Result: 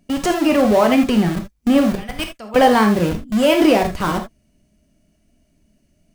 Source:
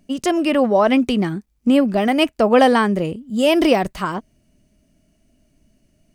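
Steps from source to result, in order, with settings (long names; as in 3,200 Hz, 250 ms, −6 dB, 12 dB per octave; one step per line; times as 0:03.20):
0:01.95–0:02.56: guitar amp tone stack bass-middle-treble 5-5-5
in parallel at −4.5 dB: comparator with hysteresis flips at −24 dBFS
on the sum: reverb whose tail is shaped and stops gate 100 ms flat, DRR 4 dB
level −2 dB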